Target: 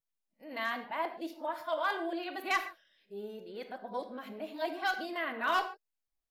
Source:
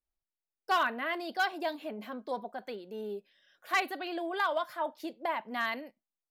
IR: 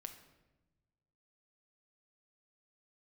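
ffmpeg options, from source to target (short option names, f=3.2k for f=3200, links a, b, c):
-filter_complex "[0:a]areverse[a];[1:a]atrim=start_sample=2205,afade=t=out:st=0.2:d=0.01,atrim=end_sample=9261[b];[a][b]afir=irnorm=-1:irlink=0,volume=3dB"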